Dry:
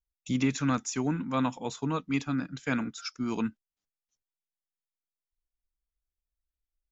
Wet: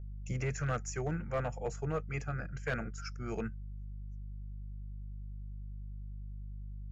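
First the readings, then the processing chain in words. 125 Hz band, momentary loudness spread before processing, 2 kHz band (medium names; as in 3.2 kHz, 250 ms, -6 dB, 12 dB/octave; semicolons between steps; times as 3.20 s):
-0.5 dB, 6 LU, -3.5 dB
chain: dynamic bell 2.8 kHz, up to -6 dB, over -48 dBFS, Q 0.91; hum 50 Hz, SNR 10 dB; static phaser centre 1 kHz, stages 6; hard clipper -28.5 dBFS, distortion -18 dB; treble shelf 6.8 kHz -9 dB; trim +2 dB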